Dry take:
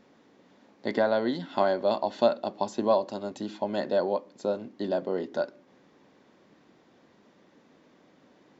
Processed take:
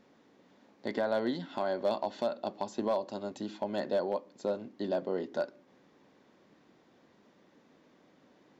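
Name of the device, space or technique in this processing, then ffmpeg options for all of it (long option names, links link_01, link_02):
limiter into clipper: -af "alimiter=limit=-16.5dB:level=0:latency=1:release=209,asoftclip=type=hard:threshold=-18.5dB,volume=-3.5dB"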